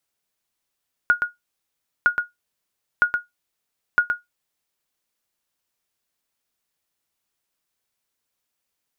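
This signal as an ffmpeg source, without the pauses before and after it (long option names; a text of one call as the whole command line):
ffmpeg -f lavfi -i "aevalsrc='0.422*(sin(2*PI*1440*mod(t,0.96))*exp(-6.91*mod(t,0.96)/0.16)+0.501*sin(2*PI*1440*max(mod(t,0.96)-0.12,0))*exp(-6.91*max(mod(t,0.96)-0.12,0)/0.16))':duration=3.84:sample_rate=44100" out.wav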